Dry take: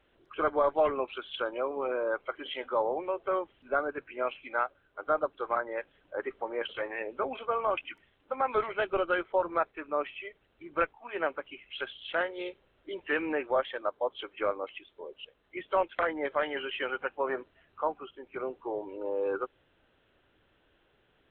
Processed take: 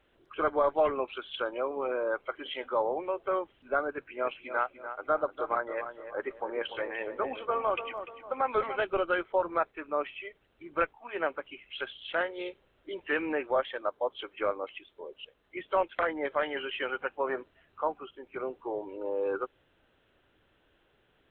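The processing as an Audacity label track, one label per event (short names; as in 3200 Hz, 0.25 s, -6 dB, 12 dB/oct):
3.950000	8.810000	darkening echo 0.294 s, feedback 41%, low-pass 1800 Hz, level -9 dB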